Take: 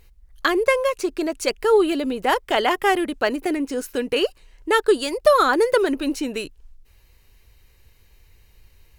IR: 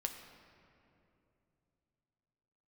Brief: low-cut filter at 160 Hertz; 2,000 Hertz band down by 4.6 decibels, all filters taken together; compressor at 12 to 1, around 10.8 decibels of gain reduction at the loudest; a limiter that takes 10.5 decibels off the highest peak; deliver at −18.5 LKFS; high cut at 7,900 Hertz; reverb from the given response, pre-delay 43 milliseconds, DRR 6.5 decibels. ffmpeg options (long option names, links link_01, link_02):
-filter_complex "[0:a]highpass=160,lowpass=7900,equalizer=frequency=2000:width_type=o:gain=-6,acompressor=threshold=-22dB:ratio=12,alimiter=limit=-23dB:level=0:latency=1,asplit=2[link_01][link_02];[1:a]atrim=start_sample=2205,adelay=43[link_03];[link_02][link_03]afir=irnorm=-1:irlink=0,volume=-6.5dB[link_04];[link_01][link_04]amix=inputs=2:normalize=0,volume=12dB"